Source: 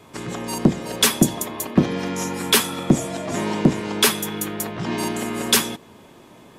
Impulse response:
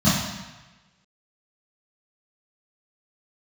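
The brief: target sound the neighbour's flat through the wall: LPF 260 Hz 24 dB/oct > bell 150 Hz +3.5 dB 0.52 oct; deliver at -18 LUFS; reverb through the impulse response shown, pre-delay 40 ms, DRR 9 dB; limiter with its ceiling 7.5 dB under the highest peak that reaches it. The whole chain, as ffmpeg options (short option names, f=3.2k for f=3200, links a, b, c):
-filter_complex "[0:a]alimiter=limit=-12dB:level=0:latency=1,asplit=2[a][b];[1:a]atrim=start_sample=2205,adelay=40[c];[b][c]afir=irnorm=-1:irlink=0,volume=-27.5dB[d];[a][d]amix=inputs=2:normalize=0,lowpass=f=260:w=0.5412,lowpass=f=260:w=1.3066,equalizer=f=150:t=o:w=0.52:g=3.5,volume=4.5dB"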